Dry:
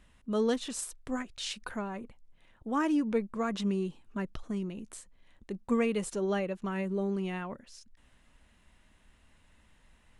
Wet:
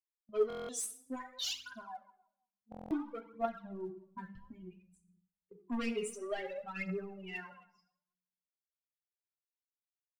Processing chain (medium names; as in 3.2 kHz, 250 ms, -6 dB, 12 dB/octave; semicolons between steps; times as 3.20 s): expander on every frequency bin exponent 3; high-pass 310 Hz 6 dB/octave; gate -60 dBFS, range -16 dB; gain riding within 4 dB 0.5 s; 1.81–4.34 s: low-pass 1.5 kHz 24 dB/octave; saturation -34.5 dBFS, distortion -12 dB; reverberation RT60 0.75 s, pre-delay 8 ms, DRR 3 dB; phaser 0.58 Hz, delay 4.8 ms, feedback 71%; buffer glitch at 0.48/2.70 s, samples 1024, times 8